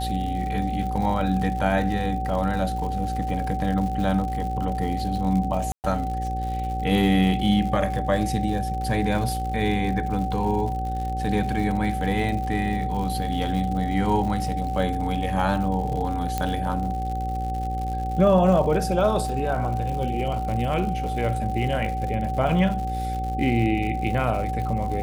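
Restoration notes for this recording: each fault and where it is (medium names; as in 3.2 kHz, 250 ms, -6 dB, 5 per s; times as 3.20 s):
buzz 60 Hz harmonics 10 -29 dBFS
crackle 120 per s -31 dBFS
whine 760 Hz -28 dBFS
5.72–5.84 s: dropout 119 ms
16.38 s: pop -11 dBFS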